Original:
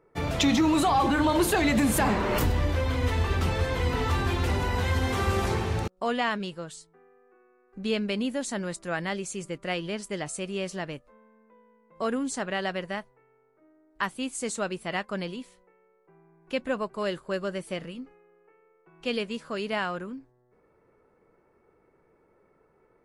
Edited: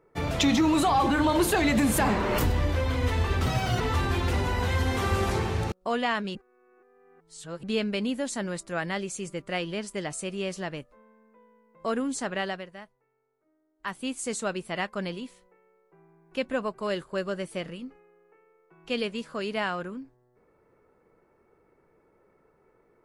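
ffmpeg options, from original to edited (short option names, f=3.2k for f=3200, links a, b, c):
-filter_complex "[0:a]asplit=7[a][b][c][d][e][f][g];[a]atrim=end=3.464[h];[b]atrim=start=3.46:end=3.96,asetpts=PTS-STARTPTS,asetrate=64386,aresample=44100[i];[c]atrim=start=3.956:end=6.512[j];[d]atrim=start=6.508:end=7.792,asetpts=PTS-STARTPTS,areverse[k];[e]atrim=start=7.788:end=12.83,asetpts=PTS-STARTPTS,afade=t=out:st=4.792:d=0.25:silence=0.281838[l];[f]atrim=start=12.83:end=13.94,asetpts=PTS-STARTPTS,volume=-11dB[m];[g]atrim=start=13.94,asetpts=PTS-STARTPTS,afade=t=in:d=0.25:silence=0.281838[n];[h][i]acrossfade=d=0.004:c1=hsin:c2=hsin[o];[o][j]acrossfade=d=0.004:c1=hsin:c2=hsin[p];[p][k]acrossfade=d=0.004:c1=hsin:c2=hsin[q];[l][m][n]concat=n=3:v=0:a=1[r];[q][r]acrossfade=d=0.004:c1=hsin:c2=hsin"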